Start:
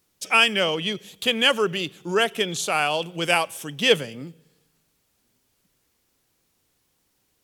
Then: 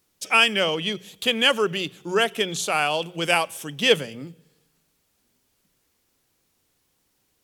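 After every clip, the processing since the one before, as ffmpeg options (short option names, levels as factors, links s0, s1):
-af "bandreject=f=60:t=h:w=6,bandreject=f=120:t=h:w=6,bandreject=f=180:t=h:w=6"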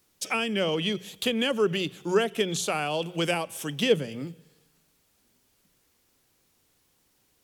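-filter_complex "[0:a]acrossover=split=470[s0][s1];[s1]acompressor=threshold=0.0355:ratio=6[s2];[s0][s2]amix=inputs=2:normalize=0,volume=1.19"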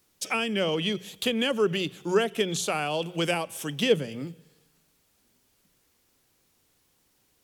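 -af anull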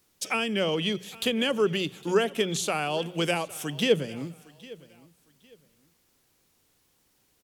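-af "aecho=1:1:808|1616:0.0891|0.0232"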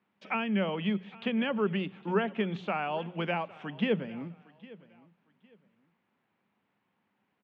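-af "highpass=f=120:w=0.5412,highpass=f=120:w=1.3066,equalizer=f=140:t=q:w=4:g=-7,equalizer=f=200:t=q:w=4:g=8,equalizer=f=320:t=q:w=4:g=-5,equalizer=f=470:t=q:w=4:g=-5,equalizer=f=910:t=q:w=4:g=4,lowpass=f=2500:w=0.5412,lowpass=f=2500:w=1.3066,volume=0.708"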